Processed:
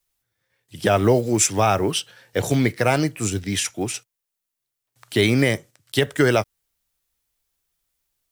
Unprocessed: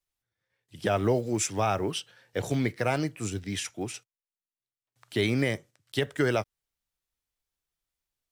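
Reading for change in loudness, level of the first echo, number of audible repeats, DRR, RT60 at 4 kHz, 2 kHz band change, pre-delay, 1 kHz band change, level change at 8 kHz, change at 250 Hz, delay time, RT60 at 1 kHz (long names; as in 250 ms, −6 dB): +8.5 dB, no echo audible, no echo audible, no reverb audible, no reverb audible, +8.5 dB, no reverb audible, +8.0 dB, +11.0 dB, +8.0 dB, no echo audible, no reverb audible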